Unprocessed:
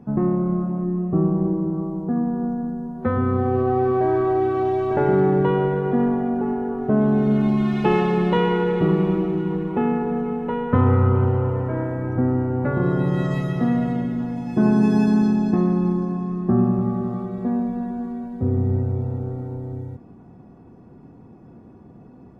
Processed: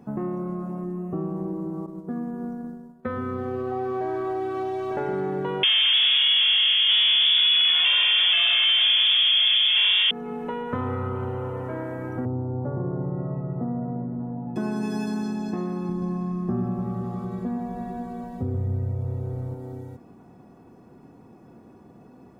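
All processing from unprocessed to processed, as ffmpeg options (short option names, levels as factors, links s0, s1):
-filter_complex "[0:a]asettb=1/sr,asplit=3[s0][s1][s2];[s0]atrim=end=1.864[s3];[s1]atrim=start=1.86:end=3.72,asetpts=PTS-STARTPTS,afade=t=in:d=0.004:c=qsin,afade=t=out:st=1.856:d=0.004:c=qsin,agate=range=0.0224:threshold=0.0708:ratio=3:release=100:detection=peak,equalizer=f=820:t=o:w=0.37:g=-8.5[s4];[s2]atrim=start=3.716[s5];[s3][s4]acrossfade=d=0.004:c1=hsin:c2=qsin[s6];[s6][s5]acrossfade=d=0.004:c1=qsin:c2=hsin,asettb=1/sr,asplit=3[s7][s8][s9];[s7]atrim=end=5.634[s10];[s8]atrim=start=5.63:end=10.11,asetpts=PTS-STARTPTS,afade=t=in:d=0.004:c=qsin,afade=t=out:st=4.476:d=0.004:c=qsin,asplit=2[s11][s12];[s12]highpass=f=720:p=1,volume=63.1,asoftclip=type=tanh:threshold=0.562[s13];[s11][s13]amix=inputs=2:normalize=0,lowpass=f=1300:p=1,volume=0.501,lowpass=f=3100:t=q:w=0.5098,lowpass=f=3100:t=q:w=0.6013,lowpass=f=3100:t=q:w=0.9,lowpass=f=3100:t=q:w=2.563,afreqshift=-3600[s14];[s9]atrim=start=10.106[s15];[s10][s14]acrossfade=d=0.004:c1=hsin:c2=qsin[s16];[s16][s15]acrossfade=d=0.004:c1=qsin:c2=hsin,asettb=1/sr,asplit=3[s17][s18][s19];[s17]atrim=end=12.254[s20];[s18]atrim=start=12.25:end=14.56,asetpts=PTS-STARTPTS,afade=t=in:d=0.004:c=qsin,afade=t=out:st=2.306:d=0.004:c=qsin,lowpass=f=1000:w=0.5412,lowpass=f=1000:w=1.3066,equalizer=f=110:w=2.4:g=13[s21];[s19]atrim=start=14.556[s22];[s20][s21]acrossfade=d=0.004:c1=hsin:c2=qsin[s23];[s23][s22]acrossfade=d=0.004:c1=qsin:c2=hsin,asettb=1/sr,asplit=3[s24][s25][s26];[s24]atrim=end=15.894[s27];[s25]atrim=start=15.89:end=19.54,asetpts=PTS-STARTPTS,afade=t=in:d=0.004:c=qsin,afade=t=out:st=3.646:d=0.004:c=qsin,lowshelf=f=150:g=12,aecho=1:1:128:0.531,atrim=end_sample=160965[s28];[s26]atrim=start=19.536[s29];[s27][s28]acrossfade=d=0.004:c1=hsin:c2=qsin[s30];[s30][s29]acrossfade=d=0.004:c1=qsin:c2=hsin,lowshelf=f=200:g=-9.5,acompressor=threshold=0.0316:ratio=2,highshelf=f=4500:g=11"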